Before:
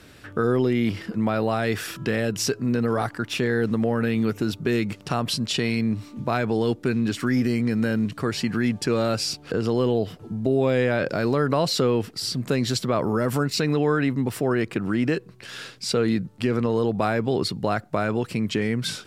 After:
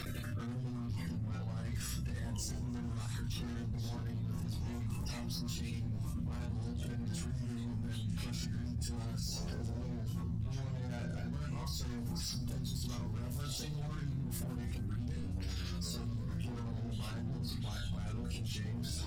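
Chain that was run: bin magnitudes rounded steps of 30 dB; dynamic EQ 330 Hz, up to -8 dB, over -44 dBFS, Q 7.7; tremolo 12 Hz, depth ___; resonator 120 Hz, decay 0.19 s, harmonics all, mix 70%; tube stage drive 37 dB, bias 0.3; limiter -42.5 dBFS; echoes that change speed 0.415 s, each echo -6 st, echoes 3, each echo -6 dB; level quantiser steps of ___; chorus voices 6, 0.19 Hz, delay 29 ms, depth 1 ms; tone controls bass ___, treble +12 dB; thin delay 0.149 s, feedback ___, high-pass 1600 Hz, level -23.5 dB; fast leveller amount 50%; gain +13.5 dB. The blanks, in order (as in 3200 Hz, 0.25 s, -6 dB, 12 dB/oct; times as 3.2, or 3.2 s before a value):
92%, 21 dB, +13 dB, 69%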